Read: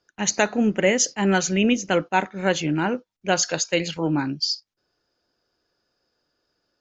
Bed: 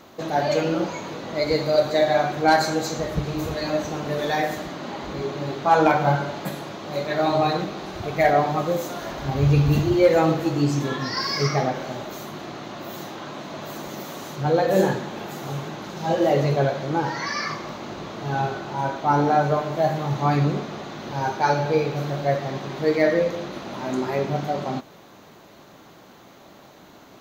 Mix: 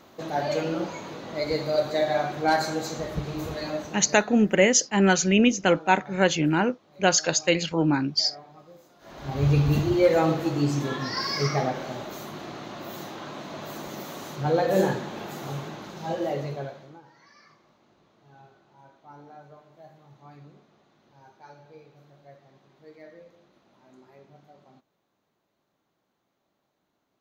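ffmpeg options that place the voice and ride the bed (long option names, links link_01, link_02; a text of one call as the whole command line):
ffmpeg -i stem1.wav -i stem2.wav -filter_complex "[0:a]adelay=3750,volume=0.5dB[link_01];[1:a]volume=18.5dB,afade=type=out:start_time=3.62:duration=0.64:silence=0.0841395,afade=type=in:start_time=8.99:duration=0.47:silence=0.0668344,afade=type=out:start_time=15.46:duration=1.55:silence=0.0530884[link_02];[link_01][link_02]amix=inputs=2:normalize=0" out.wav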